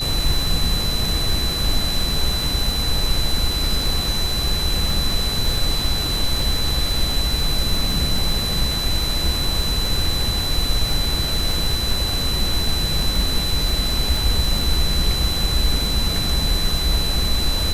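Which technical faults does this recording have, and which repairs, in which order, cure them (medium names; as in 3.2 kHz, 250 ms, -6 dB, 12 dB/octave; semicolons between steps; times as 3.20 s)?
crackle 23 per s -22 dBFS
whine 4 kHz -23 dBFS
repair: de-click; band-stop 4 kHz, Q 30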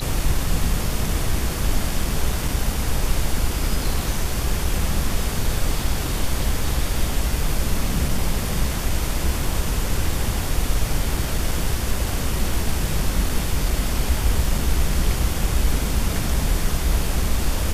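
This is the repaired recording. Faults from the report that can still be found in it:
nothing left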